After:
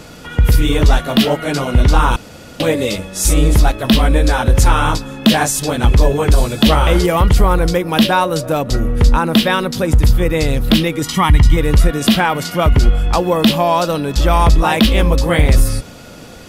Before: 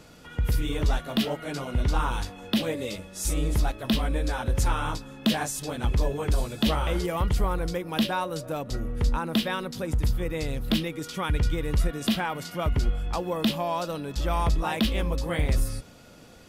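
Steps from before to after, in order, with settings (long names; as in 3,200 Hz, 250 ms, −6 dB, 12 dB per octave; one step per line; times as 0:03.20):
0:02.16–0:02.60: fill with room tone
0:11.02–0:11.57: comb filter 1 ms, depth 74%
boost into a limiter +15.5 dB
level −1 dB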